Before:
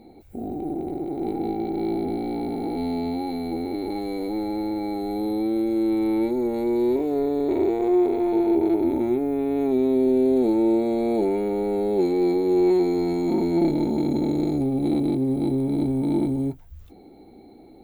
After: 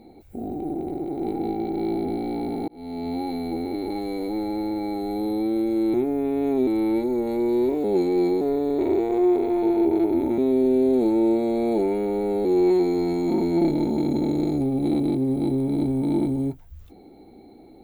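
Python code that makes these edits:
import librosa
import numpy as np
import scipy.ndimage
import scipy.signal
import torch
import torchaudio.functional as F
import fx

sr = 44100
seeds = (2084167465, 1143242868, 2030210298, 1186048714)

y = fx.edit(x, sr, fx.fade_in_span(start_s=2.68, length_s=0.5),
    fx.move(start_s=9.08, length_s=0.73, to_s=5.94),
    fx.move(start_s=11.88, length_s=0.57, to_s=7.11), tone=tone)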